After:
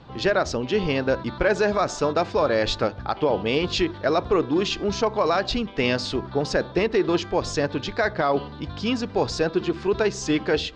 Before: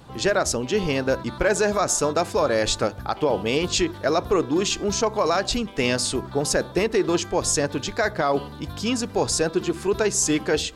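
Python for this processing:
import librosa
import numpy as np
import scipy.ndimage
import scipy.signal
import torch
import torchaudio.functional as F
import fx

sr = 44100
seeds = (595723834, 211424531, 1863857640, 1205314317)

y = scipy.signal.sosfilt(scipy.signal.butter(4, 4800.0, 'lowpass', fs=sr, output='sos'), x)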